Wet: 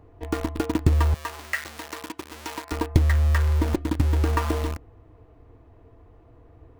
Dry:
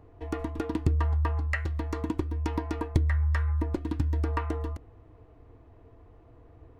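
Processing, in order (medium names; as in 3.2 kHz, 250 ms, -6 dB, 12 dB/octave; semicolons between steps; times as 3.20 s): in parallel at -5 dB: bit crusher 5-bit; 1.14–2.72 s: on the sum: high-pass 1.4 kHz 6 dB/octave; trim +2 dB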